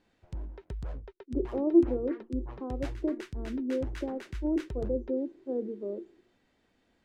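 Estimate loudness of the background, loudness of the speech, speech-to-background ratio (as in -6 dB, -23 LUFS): -42.5 LUFS, -32.0 LUFS, 10.5 dB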